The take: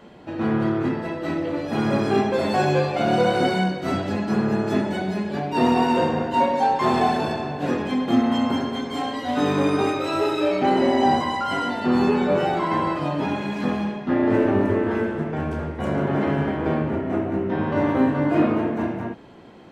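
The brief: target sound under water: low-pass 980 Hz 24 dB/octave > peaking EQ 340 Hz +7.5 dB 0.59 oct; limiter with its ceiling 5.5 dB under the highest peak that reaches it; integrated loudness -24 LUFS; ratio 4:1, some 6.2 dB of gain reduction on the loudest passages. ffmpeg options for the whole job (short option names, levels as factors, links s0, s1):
-af "acompressor=threshold=0.0794:ratio=4,alimiter=limit=0.126:level=0:latency=1,lowpass=f=980:w=0.5412,lowpass=f=980:w=1.3066,equalizer=f=340:t=o:w=0.59:g=7.5,volume=1.06"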